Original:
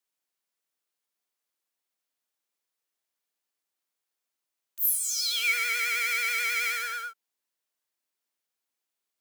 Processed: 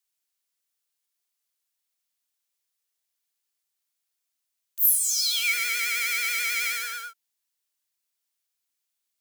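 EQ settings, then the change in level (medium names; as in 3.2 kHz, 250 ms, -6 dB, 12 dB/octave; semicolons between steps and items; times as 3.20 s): treble shelf 2 kHz +11.5 dB; -6.0 dB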